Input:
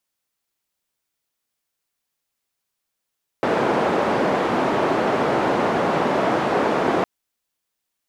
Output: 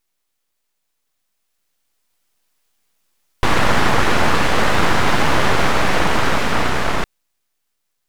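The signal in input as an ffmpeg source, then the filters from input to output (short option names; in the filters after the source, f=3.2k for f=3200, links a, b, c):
-f lavfi -i "anoisesrc=c=white:d=3.61:r=44100:seed=1,highpass=f=210,lowpass=f=760,volume=0.3dB"
-af "highshelf=f=5.1k:g=9,dynaudnorm=f=430:g=9:m=11.5dB,aeval=exprs='abs(val(0))':c=same"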